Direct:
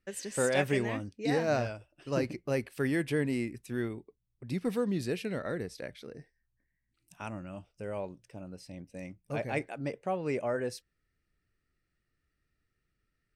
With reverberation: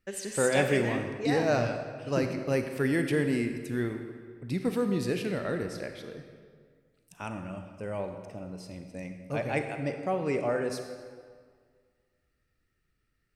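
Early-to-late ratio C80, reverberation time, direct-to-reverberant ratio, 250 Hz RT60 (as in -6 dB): 8.0 dB, 1.9 s, 6.0 dB, 1.9 s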